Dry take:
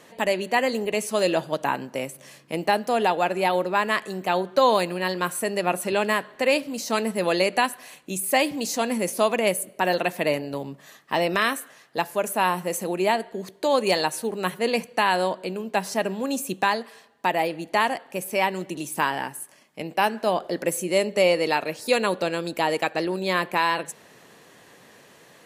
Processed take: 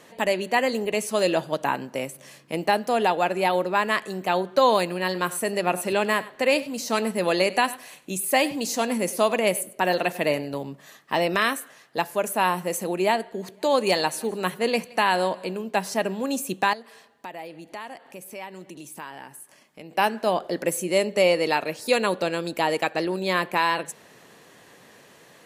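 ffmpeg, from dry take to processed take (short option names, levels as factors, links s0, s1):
-filter_complex "[0:a]asplit=3[s0][s1][s2];[s0]afade=t=out:st=5.11:d=0.02[s3];[s1]aecho=1:1:98:0.126,afade=t=in:st=5.11:d=0.02,afade=t=out:st=10.51:d=0.02[s4];[s2]afade=t=in:st=10.51:d=0.02[s5];[s3][s4][s5]amix=inputs=3:normalize=0,asplit=3[s6][s7][s8];[s6]afade=t=out:st=13.42:d=0.02[s9];[s7]aecho=1:1:170|340|510:0.0708|0.0311|0.0137,afade=t=in:st=13.42:d=0.02,afade=t=out:st=15.57:d=0.02[s10];[s8]afade=t=in:st=15.57:d=0.02[s11];[s9][s10][s11]amix=inputs=3:normalize=0,asettb=1/sr,asplit=3[s12][s13][s14];[s12]atrim=end=16.734[s15];[s13]atrim=start=16.73:end=19.93,asetpts=PTS-STARTPTS,afade=t=in:d=0.004:c=qsin,afade=t=out:st=3.196:d=0.004:c=qsin,acompressor=threshold=0.00562:ratio=2:attack=3.2:release=140:knee=1:detection=peak[s16];[s14]atrim=start=19.926[s17];[s15][s16]acrossfade=d=0.004:c1=hsin:c2=qsin[s18];[s18][s17]acrossfade=d=0.004:c1=qsin:c2=hsin"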